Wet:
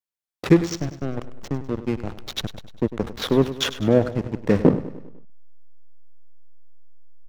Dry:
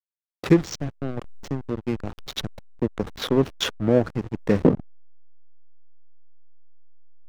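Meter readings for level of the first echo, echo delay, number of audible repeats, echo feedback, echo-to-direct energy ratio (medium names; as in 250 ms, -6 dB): -14.0 dB, 100 ms, 4, 52%, -12.5 dB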